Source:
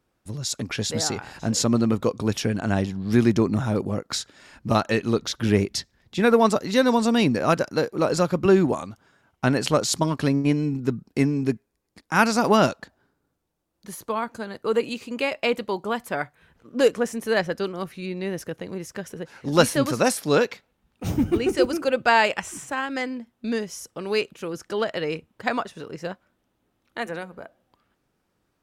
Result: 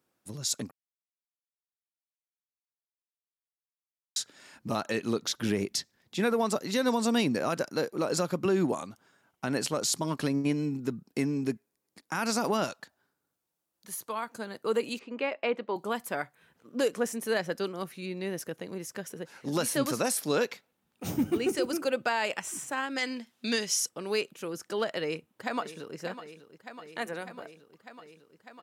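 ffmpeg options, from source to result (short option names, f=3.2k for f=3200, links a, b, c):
-filter_complex "[0:a]asettb=1/sr,asplit=3[a][b][c];[a]atrim=end=12.644[d];[b]atrim=start=12.64:end=14.3,asetpts=PTS-STARTPTS,afade=t=in:d=0.004:c=qsin,afade=t=out:st=1.656:d=0.004:c=qsin,equalizer=f=280:t=o:w=2.5:g=-7[e];[c]atrim=start=14.296[f];[d][e]acrossfade=d=0.004:c1=hsin:c2=qsin[g];[g][f]acrossfade=d=0.004:c1=qsin:c2=hsin,asettb=1/sr,asplit=3[h][i][j];[h]atrim=end=14.994[k];[i]atrim=start=14.99:end=15.76,asetpts=PTS-STARTPTS,afade=t=in:d=0.004:c=qsin,afade=t=out:st=0.766:d=0.004:c=qsin,highpass=220,lowpass=2.3k[l];[j]atrim=start=15.756[m];[k][l]acrossfade=d=0.004:c1=hsin:c2=qsin[n];[n][m]acrossfade=d=0.004:c1=qsin:c2=hsin,asettb=1/sr,asplit=3[o][p][q];[o]atrim=end=22.984[r];[p]atrim=start=22.98:end=23.89,asetpts=PTS-STARTPTS,afade=t=in:d=0.004:c=qsin,afade=t=out:st=0.906:d=0.004:c=qsin,equalizer=f=4.3k:t=o:w=3:g=13.5[s];[q]atrim=start=23.886[t];[r][s]acrossfade=d=0.004:c1=hsin:c2=qsin[u];[u][t]acrossfade=d=0.004:c1=qsin:c2=hsin,asplit=2[v][w];[w]afade=t=in:st=24.98:d=0.01,afade=t=out:st=25.97:d=0.01,aecho=0:1:600|1200|1800|2400|3000|3600|4200|4800|5400|6000|6600|7200:0.211349|0.169079|0.135263|0.108211|0.0865685|0.0692548|0.0554038|0.0443231|0.0354585|0.0283668|0.0226934|0.0181547[x];[v][x]amix=inputs=2:normalize=0,asplit=3[y][z][aa];[y]atrim=end=0.71,asetpts=PTS-STARTPTS,afade=t=out:st=0.706:d=0.004:c=hsin[ab];[z]atrim=start=0.71:end=4.16,asetpts=PTS-STARTPTS,volume=0[ac];[aa]atrim=start=4.16,asetpts=PTS-STARTPTS,afade=t=in:d=0.004:c=hsin[ad];[ab][ac][ad]concat=n=3:v=0:a=1,highpass=150,highshelf=f=7.2k:g=9,alimiter=limit=-12.5dB:level=0:latency=1:release=89,volume=-5dB"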